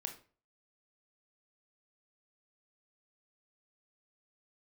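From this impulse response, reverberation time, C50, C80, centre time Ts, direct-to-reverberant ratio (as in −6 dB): 0.40 s, 11.0 dB, 16.0 dB, 14 ms, 4.5 dB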